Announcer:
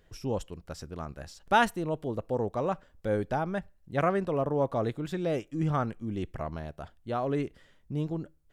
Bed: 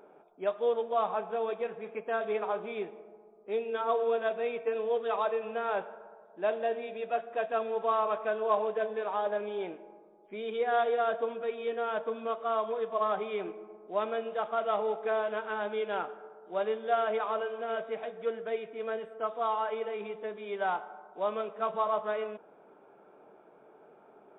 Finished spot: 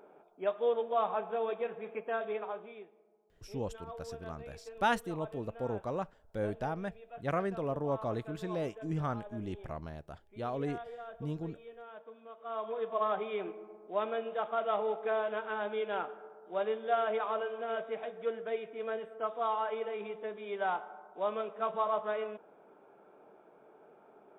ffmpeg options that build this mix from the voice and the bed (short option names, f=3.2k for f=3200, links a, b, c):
-filter_complex "[0:a]adelay=3300,volume=-6dB[a];[1:a]volume=13.5dB,afade=t=out:st=1.98:d=0.9:silence=0.16788,afade=t=in:st=12.35:d=0.52:silence=0.177828[b];[a][b]amix=inputs=2:normalize=0"